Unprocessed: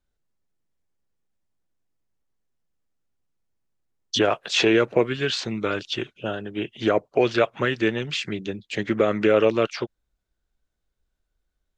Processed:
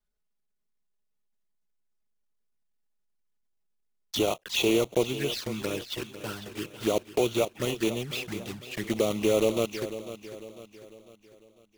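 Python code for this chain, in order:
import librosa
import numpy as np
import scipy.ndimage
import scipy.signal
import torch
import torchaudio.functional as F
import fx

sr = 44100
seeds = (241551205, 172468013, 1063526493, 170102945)

p1 = fx.block_float(x, sr, bits=3)
p2 = fx.env_flanger(p1, sr, rest_ms=4.8, full_db=-20.0)
p3 = p2 + fx.echo_feedback(p2, sr, ms=499, feedback_pct=46, wet_db=-13, dry=0)
y = p3 * 10.0 ** (-4.5 / 20.0)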